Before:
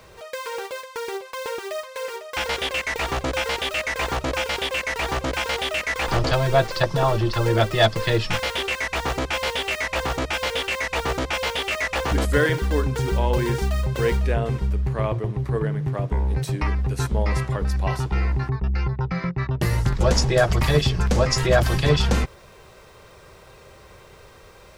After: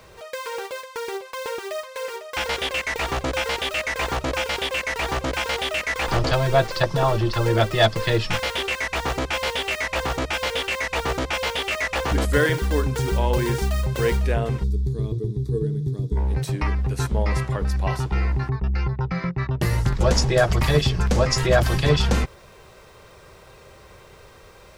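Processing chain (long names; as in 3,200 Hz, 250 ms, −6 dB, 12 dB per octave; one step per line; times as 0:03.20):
0:12.33–0:14.49: high-shelf EQ 5,900 Hz +5 dB
0:14.64–0:16.17: gain on a spectral selection 490–3,300 Hz −21 dB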